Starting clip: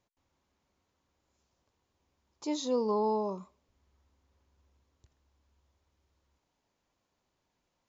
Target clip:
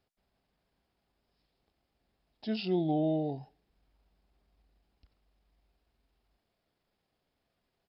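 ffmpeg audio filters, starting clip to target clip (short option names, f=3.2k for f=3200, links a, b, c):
-af "asetrate=32097,aresample=44100,atempo=1.37395"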